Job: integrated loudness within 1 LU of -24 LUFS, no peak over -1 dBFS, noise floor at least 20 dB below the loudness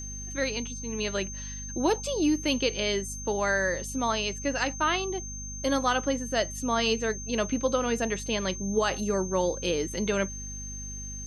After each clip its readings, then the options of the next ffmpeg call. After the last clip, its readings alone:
hum 50 Hz; harmonics up to 250 Hz; hum level -38 dBFS; steady tone 6300 Hz; tone level -38 dBFS; loudness -28.5 LUFS; peak -11.5 dBFS; loudness target -24.0 LUFS
-> -af "bandreject=f=50:t=h:w=4,bandreject=f=100:t=h:w=4,bandreject=f=150:t=h:w=4,bandreject=f=200:t=h:w=4,bandreject=f=250:t=h:w=4"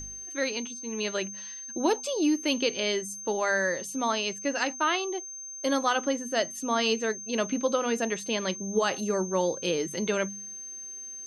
hum none; steady tone 6300 Hz; tone level -38 dBFS
-> -af "bandreject=f=6.3k:w=30"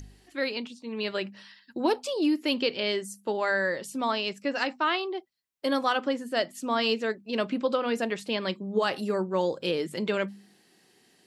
steady tone none; loudness -29.0 LUFS; peak -11.5 dBFS; loudness target -24.0 LUFS
-> -af "volume=5dB"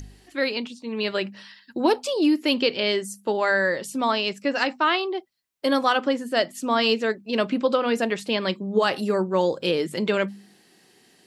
loudness -24.0 LUFS; peak -6.5 dBFS; noise floor -58 dBFS

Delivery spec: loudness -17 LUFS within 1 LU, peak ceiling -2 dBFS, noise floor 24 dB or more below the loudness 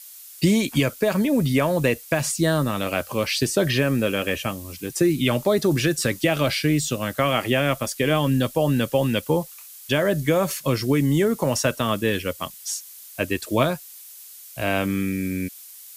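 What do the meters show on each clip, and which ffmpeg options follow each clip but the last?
noise floor -43 dBFS; noise floor target -47 dBFS; loudness -22.5 LUFS; peak -8.5 dBFS; loudness target -17.0 LUFS
-> -af "afftdn=nr=6:nf=-43"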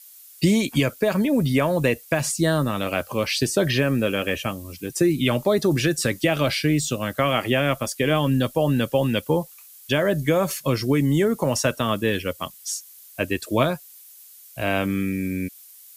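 noise floor -47 dBFS; loudness -22.5 LUFS; peak -8.5 dBFS; loudness target -17.0 LUFS
-> -af "volume=5.5dB"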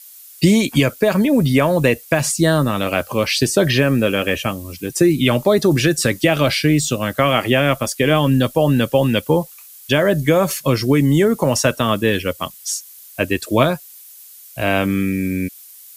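loudness -17.0 LUFS; peak -3.0 dBFS; noise floor -41 dBFS

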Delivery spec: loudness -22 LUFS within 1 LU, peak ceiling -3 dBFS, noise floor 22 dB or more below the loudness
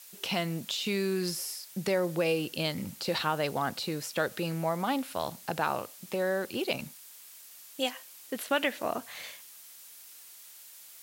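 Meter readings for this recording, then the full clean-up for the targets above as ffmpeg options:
noise floor -51 dBFS; noise floor target -54 dBFS; loudness -32.0 LUFS; peak -13.5 dBFS; loudness target -22.0 LUFS
-> -af "afftdn=nr=6:nf=-51"
-af "volume=10dB"

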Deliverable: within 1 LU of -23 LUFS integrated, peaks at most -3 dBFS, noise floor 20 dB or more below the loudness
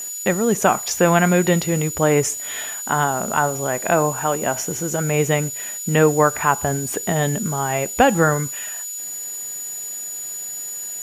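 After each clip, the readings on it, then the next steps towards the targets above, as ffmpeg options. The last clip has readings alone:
steady tone 6900 Hz; tone level -28 dBFS; noise floor -30 dBFS; noise floor target -40 dBFS; loudness -20.0 LUFS; peak -2.0 dBFS; loudness target -23.0 LUFS
-> -af "bandreject=f=6.9k:w=30"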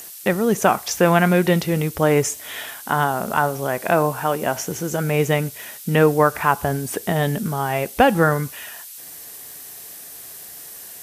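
steady tone none; noise floor -38 dBFS; noise floor target -40 dBFS
-> -af "afftdn=nr=6:nf=-38"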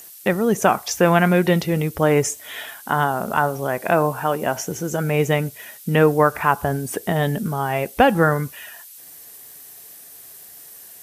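noise floor -43 dBFS; loudness -20.0 LUFS; peak -2.5 dBFS; loudness target -23.0 LUFS
-> -af "volume=-3dB"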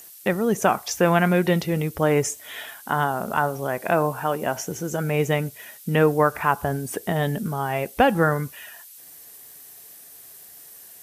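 loudness -23.0 LUFS; peak -5.5 dBFS; noise floor -46 dBFS

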